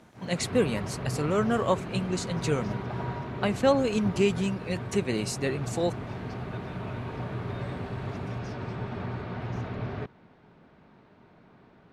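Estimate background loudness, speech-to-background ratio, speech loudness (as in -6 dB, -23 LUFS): -35.5 LUFS, 7.0 dB, -28.5 LUFS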